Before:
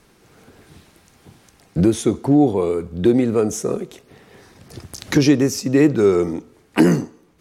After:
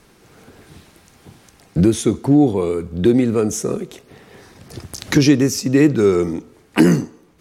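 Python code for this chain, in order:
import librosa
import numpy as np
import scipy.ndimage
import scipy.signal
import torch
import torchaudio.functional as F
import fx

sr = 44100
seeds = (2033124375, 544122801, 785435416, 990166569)

y = fx.dynamic_eq(x, sr, hz=680.0, q=0.78, threshold_db=-30.0, ratio=4.0, max_db=-5)
y = y * librosa.db_to_amplitude(3.0)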